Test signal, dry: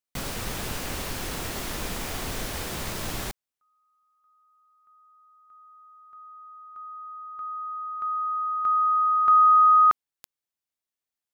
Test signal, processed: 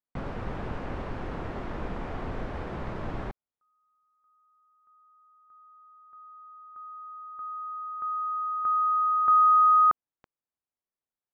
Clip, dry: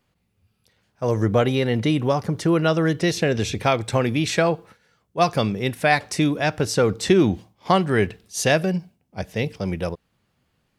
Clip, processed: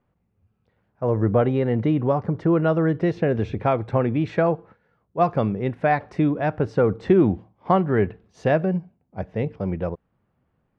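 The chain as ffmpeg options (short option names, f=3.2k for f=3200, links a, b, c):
-af "lowpass=1.3k"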